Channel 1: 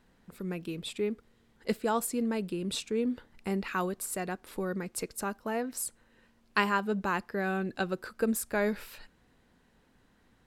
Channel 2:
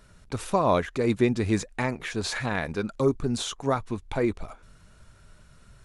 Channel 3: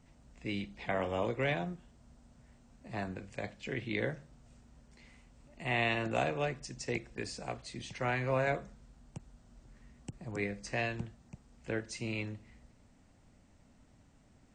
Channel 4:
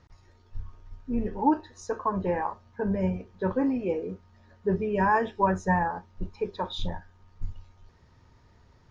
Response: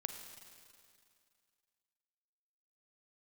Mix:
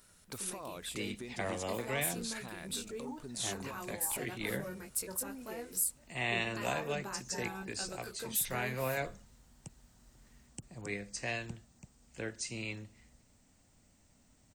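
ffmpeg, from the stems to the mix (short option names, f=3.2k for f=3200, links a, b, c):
-filter_complex "[0:a]flanger=delay=19.5:depth=2.1:speed=0.24,volume=-6.5dB[a];[1:a]acompressor=threshold=-30dB:ratio=6,volume=-9dB[b];[2:a]adelay=500,volume=-4dB[c];[3:a]bandreject=f=430:w=12,alimiter=limit=-19dB:level=0:latency=1:release=373,adelay=1650,volume=-14dB[d];[a][b][d]amix=inputs=3:normalize=0,lowshelf=f=120:g=-8.5,alimiter=level_in=9.5dB:limit=-24dB:level=0:latency=1:release=151,volume=-9.5dB,volume=0dB[e];[c][e]amix=inputs=2:normalize=0,aemphasis=mode=production:type=75fm"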